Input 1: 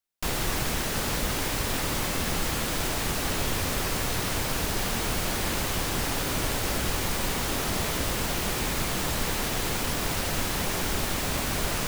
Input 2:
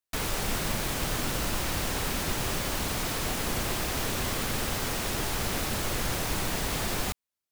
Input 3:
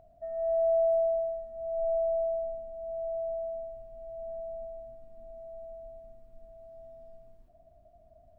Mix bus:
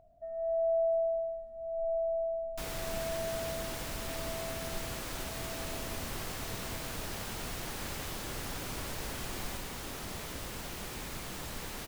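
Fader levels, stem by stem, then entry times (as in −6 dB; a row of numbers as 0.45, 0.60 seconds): −13.0, −13.5, −3.5 decibels; 2.35, 2.45, 0.00 seconds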